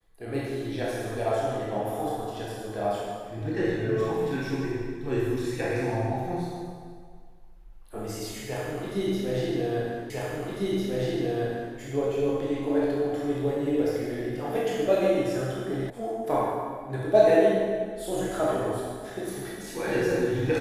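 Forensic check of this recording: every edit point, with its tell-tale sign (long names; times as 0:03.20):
0:10.10: the same again, the last 1.65 s
0:15.90: cut off before it has died away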